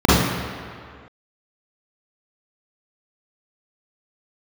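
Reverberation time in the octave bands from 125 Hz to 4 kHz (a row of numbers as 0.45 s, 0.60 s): 1.7 s, 1.8 s, 2.0 s, 2.2 s, 2.1 s, 1.6 s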